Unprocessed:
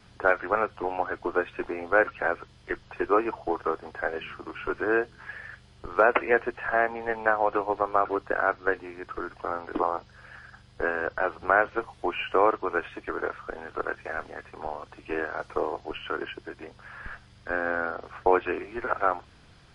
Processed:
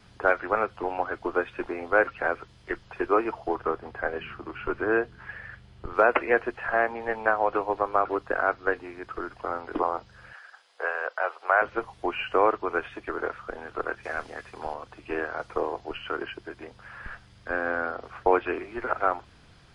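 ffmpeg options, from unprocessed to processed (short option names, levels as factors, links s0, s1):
-filter_complex "[0:a]asettb=1/sr,asplit=3[s0][s1][s2];[s0]atrim=end=3.554[s3];[s1]atrim=start=3.55:end=5.94,asetpts=PTS-STARTPTS,afade=t=in:d=0.004:c=qsin,afade=t=out:st=2.386:d=0.004:c=qsin,bass=f=250:g=4,treble=f=4000:g=-7[s4];[s2]atrim=start=5.936[s5];[s3][s4]acrossfade=d=0.004:c1=hsin:c2=qsin[s6];[s6][s5]acrossfade=d=0.004:c1=qsin:c2=hsin,asettb=1/sr,asplit=3[s7][s8][s9];[s7]atrim=end=10.334[s10];[s8]atrim=start=10.33:end=11.62,asetpts=PTS-STARTPTS,afade=t=in:d=0.004:c=qsin,afade=t=out:st=1.286:d=0.004:c=qsin,highpass=f=520:w=0.5412,highpass=f=520:w=1.3066[s11];[s9]atrim=start=11.616[s12];[s10][s11]acrossfade=d=0.004:c1=hsin:c2=qsin[s13];[s13][s12]acrossfade=d=0.004:c1=qsin:c2=hsin,asettb=1/sr,asplit=3[s14][s15][s16];[s14]atrim=end=14.034[s17];[s15]atrim=start=14.03:end=14.74,asetpts=PTS-STARTPTS,afade=t=in:d=0.004:c=qsin,afade=t=out:st=0.706:d=0.004:c=qsin,highshelf=f=3400:g=8.5[s18];[s16]atrim=start=14.736[s19];[s17][s18]acrossfade=d=0.004:c1=hsin:c2=qsin[s20];[s20][s19]acrossfade=d=0.004:c1=qsin:c2=hsin"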